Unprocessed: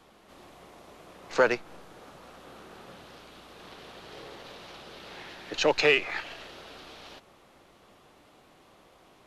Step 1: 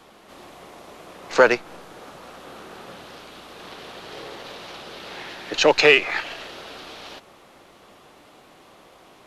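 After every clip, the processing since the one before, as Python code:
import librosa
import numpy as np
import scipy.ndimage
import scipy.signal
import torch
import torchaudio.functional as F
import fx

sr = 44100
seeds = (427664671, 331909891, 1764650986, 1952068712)

y = fx.low_shelf(x, sr, hz=140.0, db=-6.5)
y = y * 10.0 ** (8.0 / 20.0)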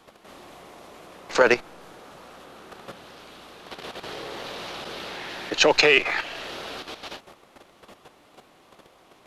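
y = fx.level_steps(x, sr, step_db=10)
y = y * 10.0 ** (4.0 / 20.0)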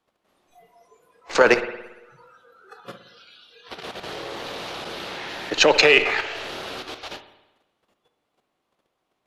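y = fx.noise_reduce_blind(x, sr, reduce_db=23)
y = fx.rev_spring(y, sr, rt60_s=1.0, pass_ms=(56,), chirp_ms=55, drr_db=10.5)
y = y * 10.0 ** (2.0 / 20.0)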